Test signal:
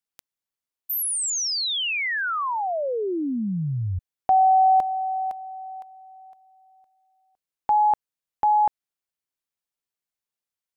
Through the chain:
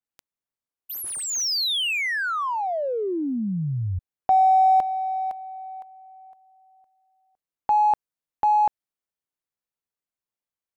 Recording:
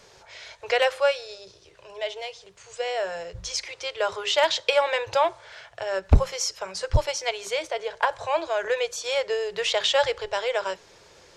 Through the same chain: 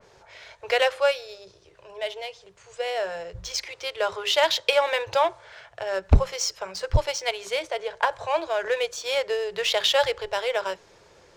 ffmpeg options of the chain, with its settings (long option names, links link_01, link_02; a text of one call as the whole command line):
ffmpeg -i in.wav -filter_complex "[0:a]asplit=2[link_01][link_02];[link_02]adynamicsmooth=sensitivity=7.5:basefreq=2500,volume=0dB[link_03];[link_01][link_03]amix=inputs=2:normalize=0,adynamicequalizer=threshold=0.0316:dfrequency=2700:dqfactor=0.7:tfrequency=2700:tqfactor=0.7:attack=5:release=100:ratio=0.375:range=1.5:mode=boostabove:tftype=highshelf,volume=-6dB" out.wav